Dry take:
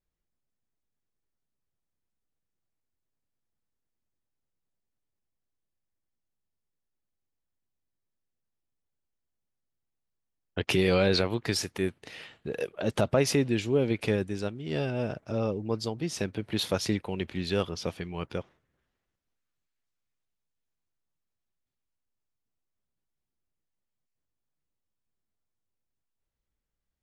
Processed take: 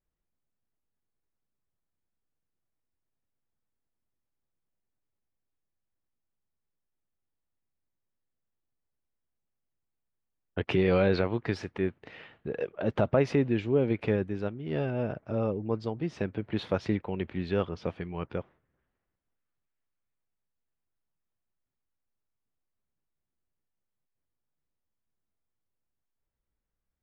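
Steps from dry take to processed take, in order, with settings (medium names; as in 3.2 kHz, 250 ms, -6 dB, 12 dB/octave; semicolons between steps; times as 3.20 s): low-pass 2.1 kHz 12 dB/octave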